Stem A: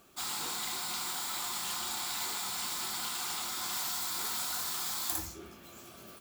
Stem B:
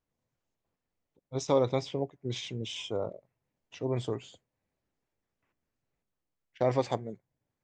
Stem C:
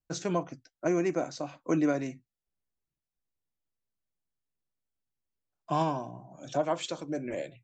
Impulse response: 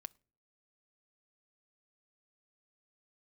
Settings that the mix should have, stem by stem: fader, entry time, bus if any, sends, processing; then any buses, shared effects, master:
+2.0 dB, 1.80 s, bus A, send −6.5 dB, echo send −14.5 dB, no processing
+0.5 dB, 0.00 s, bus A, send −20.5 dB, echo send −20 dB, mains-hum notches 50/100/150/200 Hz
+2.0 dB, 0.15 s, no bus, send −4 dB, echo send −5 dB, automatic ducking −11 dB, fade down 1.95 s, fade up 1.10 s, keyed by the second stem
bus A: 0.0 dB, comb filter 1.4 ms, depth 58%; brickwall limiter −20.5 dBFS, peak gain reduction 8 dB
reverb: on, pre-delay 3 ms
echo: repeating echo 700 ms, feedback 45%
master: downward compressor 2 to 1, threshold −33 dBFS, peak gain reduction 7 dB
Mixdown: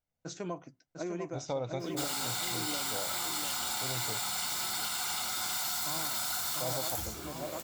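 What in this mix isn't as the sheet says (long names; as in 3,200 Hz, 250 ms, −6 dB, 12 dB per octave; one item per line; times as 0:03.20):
stem B +0.5 dB → −6.0 dB
stem C +2.0 dB → −7.5 dB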